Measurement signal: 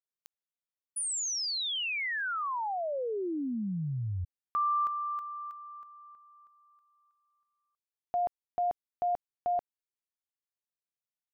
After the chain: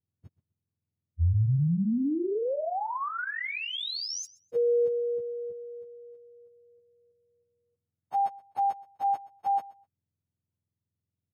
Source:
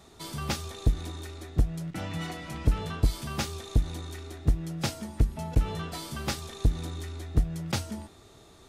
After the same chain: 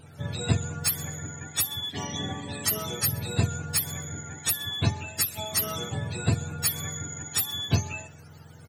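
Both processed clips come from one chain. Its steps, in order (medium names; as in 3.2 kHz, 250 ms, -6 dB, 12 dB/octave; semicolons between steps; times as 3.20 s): spectrum inverted on a logarithmic axis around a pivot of 750 Hz; feedback delay 126 ms, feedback 21%, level -21 dB; trim +4 dB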